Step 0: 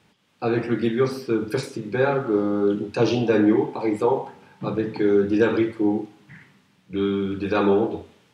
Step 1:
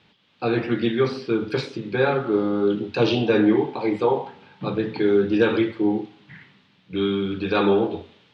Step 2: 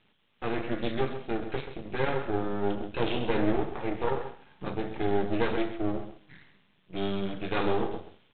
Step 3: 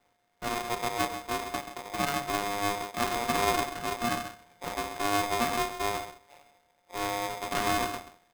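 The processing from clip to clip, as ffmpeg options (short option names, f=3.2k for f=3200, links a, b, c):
-af "lowpass=f=3.7k:t=q:w=2.1"
-af "aresample=8000,aeval=exprs='max(val(0),0)':c=same,aresample=44100,aecho=1:1:132:0.266,volume=-4.5dB"
-filter_complex "[0:a]acrossover=split=1900[a][b];[b]acrusher=samples=21:mix=1:aa=0.000001[c];[a][c]amix=inputs=2:normalize=0,aeval=exprs='val(0)*sgn(sin(2*PI*710*n/s))':c=same,volume=-2.5dB"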